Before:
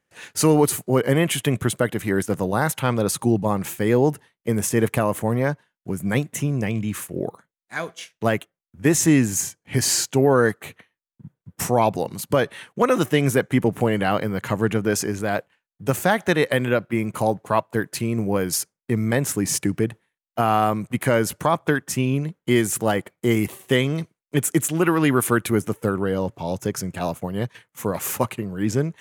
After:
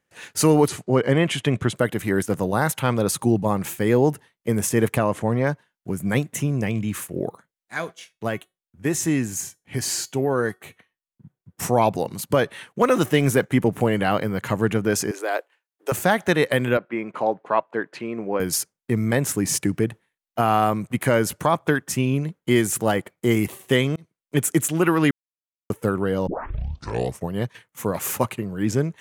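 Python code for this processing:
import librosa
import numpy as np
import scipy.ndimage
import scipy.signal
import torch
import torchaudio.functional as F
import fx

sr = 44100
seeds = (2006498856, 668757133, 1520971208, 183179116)

y = fx.lowpass(x, sr, hz=5900.0, slope=12, at=(0.68, 1.76))
y = fx.lowpass(y, sr, hz=6700.0, slope=12, at=(4.97, 5.47))
y = fx.comb_fb(y, sr, f0_hz=370.0, decay_s=0.22, harmonics='all', damping=0.0, mix_pct=50, at=(7.91, 11.62), fade=0.02)
y = fx.law_mismatch(y, sr, coded='mu', at=(12.82, 13.45))
y = fx.ellip_highpass(y, sr, hz=340.0, order=4, stop_db=50, at=(15.11, 15.92))
y = fx.bandpass_edges(y, sr, low_hz=320.0, high_hz=2600.0, at=(16.77, 18.4))
y = fx.edit(y, sr, fx.fade_in_span(start_s=23.96, length_s=0.41),
    fx.silence(start_s=25.11, length_s=0.59),
    fx.tape_start(start_s=26.27, length_s=1.05), tone=tone)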